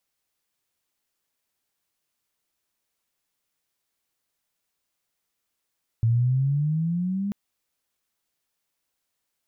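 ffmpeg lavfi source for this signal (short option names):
-f lavfi -i "aevalsrc='pow(10,(-17-7.5*t/1.29)/20)*sin(2*PI*112*1.29/(10.5*log(2)/12)*(exp(10.5*log(2)/12*t/1.29)-1))':d=1.29:s=44100"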